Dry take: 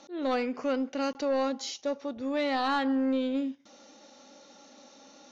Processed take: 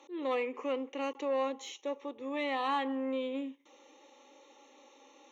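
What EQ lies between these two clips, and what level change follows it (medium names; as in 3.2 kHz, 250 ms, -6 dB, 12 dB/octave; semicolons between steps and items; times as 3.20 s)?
high-pass 250 Hz 12 dB/octave; static phaser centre 1 kHz, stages 8; 0.0 dB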